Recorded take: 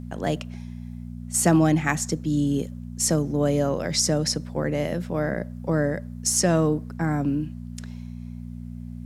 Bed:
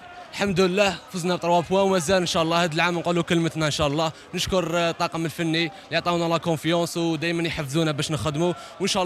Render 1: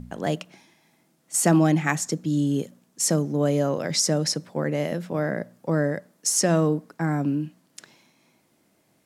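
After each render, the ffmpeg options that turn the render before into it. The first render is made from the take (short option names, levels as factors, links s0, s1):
-af "bandreject=f=60:t=h:w=4,bandreject=f=120:t=h:w=4,bandreject=f=180:t=h:w=4,bandreject=f=240:t=h:w=4"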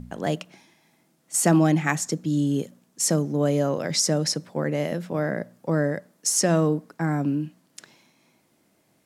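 -af anull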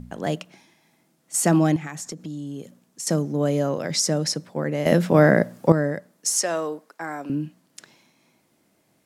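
-filter_complex "[0:a]asettb=1/sr,asplit=3[s0][s1][s2];[s0]atrim=end=1.764[s3];[s1]atrim=start=1.76:end=3.07,asetpts=PTS-STARTPTS,afade=t=in:d=0.004:c=qsin,afade=t=out:st=1.306:d=0.004:c=qsin,acompressor=threshold=0.0316:ratio=6:attack=3.2:release=140:knee=1:detection=peak[s4];[s2]atrim=start=3.066[s5];[s3][s4]acrossfade=d=0.004:c1=hsin:c2=qsin[s6];[s6][s5]acrossfade=d=0.004:c1=qsin:c2=hsin,asettb=1/sr,asplit=3[s7][s8][s9];[s7]atrim=end=6.364[s10];[s8]atrim=start=6.36:end=7.3,asetpts=PTS-STARTPTS,afade=t=in:d=0.004:c=qsin,afade=t=out:st=0.936:d=0.004:c=qsin,highpass=530[s11];[s9]atrim=start=7.296[s12];[s10][s11]acrossfade=d=0.004:c1=hsin:c2=qsin[s13];[s13][s12]acrossfade=d=0.004:c1=qsin:c2=hsin,asplit=3[s14][s15][s16];[s14]atrim=end=4.862[s17];[s15]atrim=start=4.858:end=5.722,asetpts=PTS-STARTPTS,volume=3.55[s18];[s16]atrim=start=5.718[s19];[s17][s18]acrossfade=d=0.004:c1=hsin:c2=hsin[s20];[s20][s19]acrossfade=d=0.004:c1=hsin:c2=hsin"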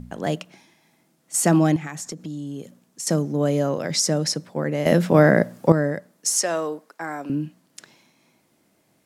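-af "volume=1.12,alimiter=limit=0.708:level=0:latency=1"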